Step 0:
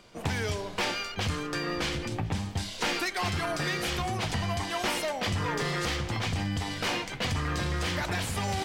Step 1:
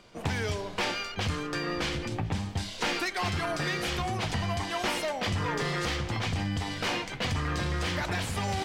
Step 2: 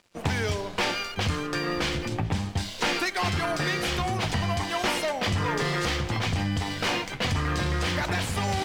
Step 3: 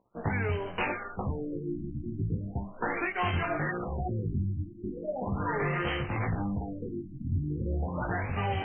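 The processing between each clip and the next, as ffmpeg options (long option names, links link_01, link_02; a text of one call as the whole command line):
ffmpeg -i in.wav -af "highshelf=frequency=8800:gain=-6" out.wav
ffmpeg -i in.wav -af "aeval=exprs='sgn(val(0))*max(abs(val(0))-0.00237,0)':channel_layout=same,volume=4dB" out.wav
ffmpeg -i in.wav -af "flanger=delay=15.5:depth=7.1:speed=0.76,afftfilt=real='re*lt(b*sr/1024,340*pow(3200/340,0.5+0.5*sin(2*PI*0.38*pts/sr)))':imag='im*lt(b*sr/1024,340*pow(3200/340,0.5+0.5*sin(2*PI*0.38*pts/sr)))':win_size=1024:overlap=0.75" out.wav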